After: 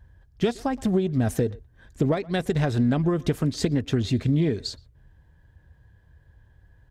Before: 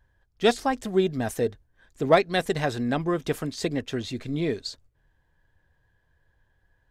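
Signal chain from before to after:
high-pass filter 50 Hz
low-shelf EQ 130 Hz +4.5 dB
downward compressor 10 to 1, threshold −28 dBFS, peak gain reduction 16.5 dB
low-shelf EQ 280 Hz +11 dB
far-end echo of a speakerphone 120 ms, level −22 dB
highs frequency-modulated by the lows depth 0.12 ms
level +3.5 dB

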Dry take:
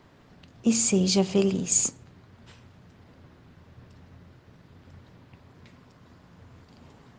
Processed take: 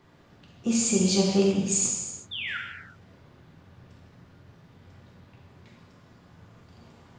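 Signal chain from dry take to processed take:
sound drawn into the spectrogram fall, 0:02.31–0:02.58, 1,300–3,700 Hz −32 dBFS
reverb whose tail is shaped and stops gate 400 ms falling, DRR −2.5 dB
level −4.5 dB

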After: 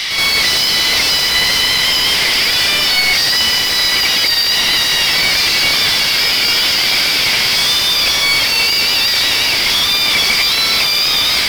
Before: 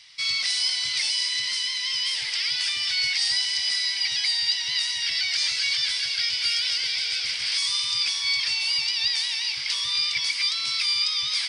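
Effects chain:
hum removal 171.9 Hz, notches 23
mid-hump overdrive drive 35 dB, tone 2,800 Hz, clips at −11.5 dBFS
in parallel at −10 dB: wave folding −31.5 dBFS
on the sum: backwards echo 74 ms −6 dB
level +7 dB

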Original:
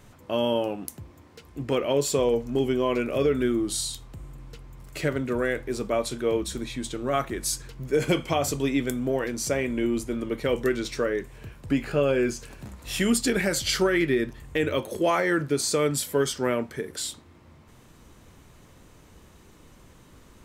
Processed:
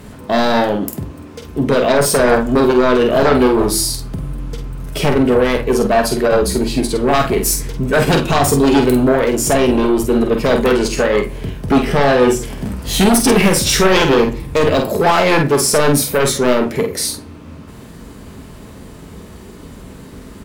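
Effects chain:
high-pass filter 46 Hz
low-shelf EQ 390 Hz +7.5 dB
in parallel at −7 dB: sine wavefolder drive 12 dB, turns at −6.5 dBFS
on the sum: formants moved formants +3 semitones
double-tracking delay 48 ms −6 dB
on a send at −11.5 dB: convolution reverb RT60 0.50 s, pre-delay 4 ms

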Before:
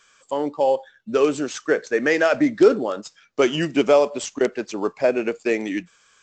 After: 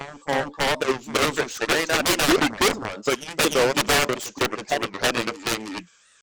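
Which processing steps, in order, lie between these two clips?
high-shelf EQ 2,400 Hz +5.5 dB
harmonic generator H 7 −14 dB, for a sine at −4 dBFS
backwards echo 319 ms −8.5 dB
wave folding −16.5 dBFS
wow of a warped record 45 rpm, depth 250 cents
level +5 dB

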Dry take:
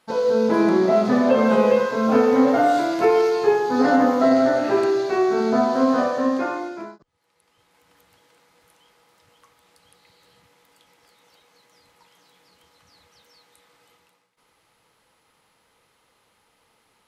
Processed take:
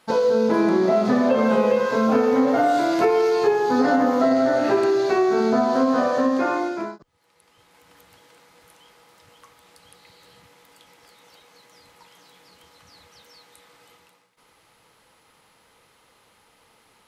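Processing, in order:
downward compressor 3 to 1, threshold −23 dBFS, peak gain reduction 8.5 dB
level +5.5 dB

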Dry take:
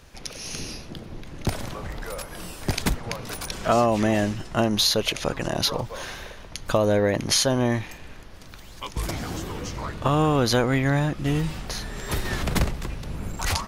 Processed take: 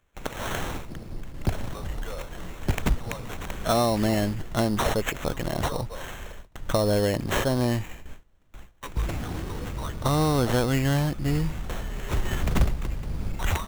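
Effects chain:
high-shelf EQ 3,400 Hz +10 dB, from 0:00.85 −2.5 dB
sample-rate reduction 4,800 Hz, jitter 0%
noise gate with hold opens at −30 dBFS
low-shelf EQ 91 Hz +8 dB
level −3 dB

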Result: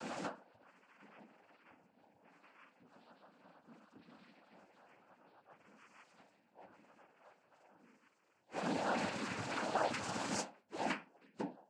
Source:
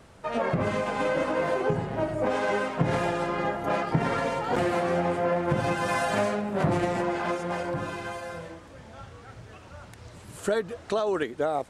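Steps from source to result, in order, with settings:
0:03.41–0:04.27: comb filter 1 ms, depth 93%
in parallel at +2.5 dB: downward compressor 5 to 1, threshold −35 dBFS, peak gain reduction 18 dB
on the sum: gate with flip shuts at −22 dBFS, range −41 dB
stiff-string resonator 280 Hz, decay 0.35 s, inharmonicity 0.008
cochlear-implant simulation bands 8
level +17.5 dB

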